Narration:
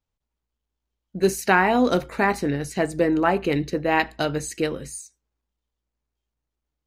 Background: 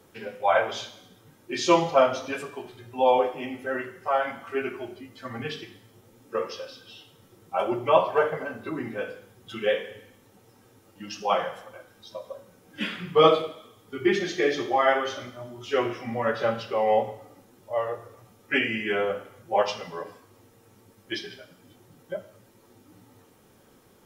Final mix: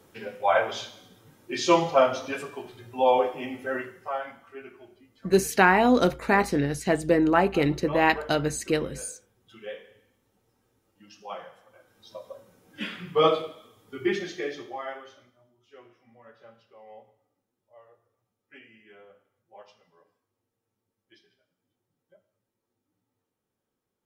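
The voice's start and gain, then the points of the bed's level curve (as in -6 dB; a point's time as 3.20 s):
4.10 s, -0.5 dB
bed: 3.76 s -0.5 dB
4.56 s -14 dB
11.61 s -14 dB
12.11 s -3.5 dB
14.12 s -3.5 dB
15.62 s -26.5 dB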